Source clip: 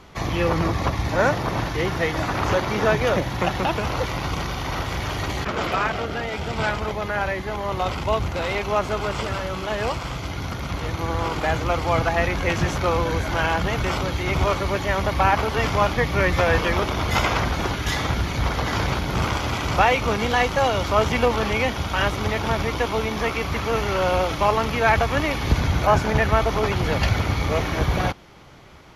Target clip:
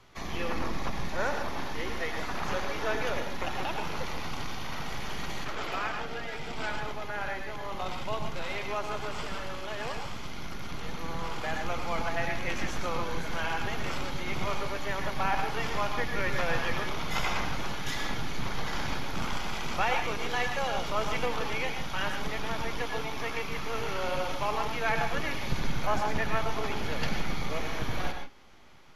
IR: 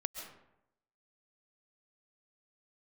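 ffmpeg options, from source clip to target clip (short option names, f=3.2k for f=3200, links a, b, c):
-filter_complex "[0:a]equalizer=f=580:w=0.59:g=-4,acrossover=split=290|840[a][b][c];[a]aeval=exprs='abs(val(0))':c=same[d];[d][b][c]amix=inputs=3:normalize=0[e];[1:a]atrim=start_sample=2205,afade=t=out:st=0.27:d=0.01,atrim=end_sample=12348,asetrate=57330,aresample=44100[f];[e][f]afir=irnorm=-1:irlink=0,volume=-5dB"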